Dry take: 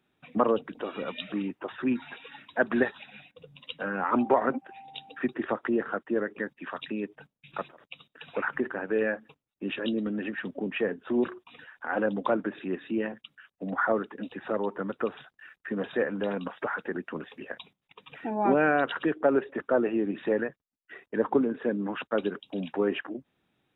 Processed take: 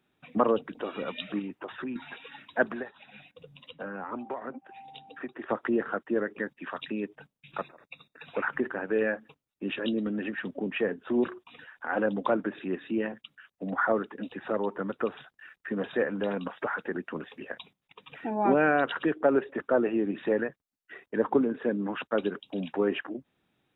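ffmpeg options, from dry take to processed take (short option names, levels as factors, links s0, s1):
-filter_complex "[0:a]asettb=1/sr,asplit=3[s0][s1][s2];[s0]atrim=end=1.394[s3];[s1]atrim=start=1.39:end=1.96,asetpts=PTS-STARTPTS,afade=t=in:d=0.004:c=qsin,afade=t=out:st=0.566:d=0.004:c=qsin,acompressor=threshold=0.0251:ratio=6:attack=3.2:release=140:knee=1:detection=peak[s4];[s2]atrim=start=1.956[s5];[s3][s4]acrossfade=d=0.004:c1=hsin:c2=qsin[s6];[s6][s5]acrossfade=d=0.004:c1=qsin:c2=hsin,asettb=1/sr,asplit=3[s7][s8][s9];[s7]atrim=end=2.654[s10];[s8]atrim=start=2.65:end=5.5,asetpts=PTS-STARTPTS,afade=t=in:d=0.004:c=qsin,afade=t=out:st=2.846:d=0.004:c=qsin,acrossover=split=550|1200[s11][s12][s13];[s11]acompressor=threshold=0.01:ratio=4[s14];[s12]acompressor=threshold=0.00794:ratio=4[s15];[s13]acompressor=threshold=0.00398:ratio=4[s16];[s14][s15][s16]amix=inputs=3:normalize=0[s17];[s9]atrim=start=5.496[s18];[s10][s17]acrossfade=d=0.004:c1=hsin:c2=qsin[s19];[s19][s18]acrossfade=d=0.004:c1=qsin:c2=hsin,asettb=1/sr,asplit=3[s20][s21][s22];[s20]atrim=end=7.614[s23];[s21]atrim=start=7.61:end=8.26,asetpts=PTS-STARTPTS,afade=t=in:d=0.004:c=qsin,afade=t=out:st=0.646:d=0.004:c=qsin,asuperstop=centerf=3100:order=20:qfactor=4.7[s24];[s22]atrim=start=8.256[s25];[s23][s24]acrossfade=d=0.004:c1=hsin:c2=qsin[s26];[s26][s25]acrossfade=d=0.004:c1=qsin:c2=hsin"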